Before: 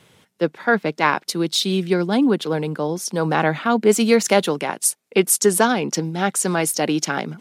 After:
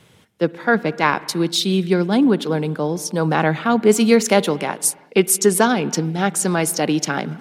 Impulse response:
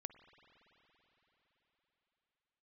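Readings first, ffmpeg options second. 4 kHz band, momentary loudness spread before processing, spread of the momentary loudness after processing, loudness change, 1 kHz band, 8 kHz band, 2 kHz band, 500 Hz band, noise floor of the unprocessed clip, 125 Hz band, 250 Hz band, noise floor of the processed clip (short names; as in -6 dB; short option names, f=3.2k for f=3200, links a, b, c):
+0.5 dB, 8 LU, 7 LU, +1.0 dB, +0.5 dB, +0.5 dB, +0.5 dB, +1.0 dB, -62 dBFS, +3.0 dB, +2.5 dB, -52 dBFS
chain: -filter_complex "[0:a]asplit=2[a][b];[1:a]atrim=start_sample=2205,afade=t=out:st=0.43:d=0.01,atrim=end_sample=19404,lowshelf=f=230:g=9.5[c];[b][c]afir=irnorm=-1:irlink=0,volume=3dB[d];[a][d]amix=inputs=2:normalize=0,volume=-4.5dB"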